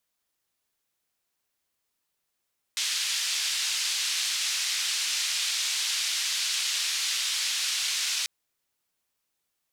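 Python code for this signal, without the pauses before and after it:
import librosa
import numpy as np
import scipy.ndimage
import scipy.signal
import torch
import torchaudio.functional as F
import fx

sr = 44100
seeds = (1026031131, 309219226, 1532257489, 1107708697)

y = fx.band_noise(sr, seeds[0], length_s=5.49, low_hz=2800.0, high_hz=5400.0, level_db=-28.5)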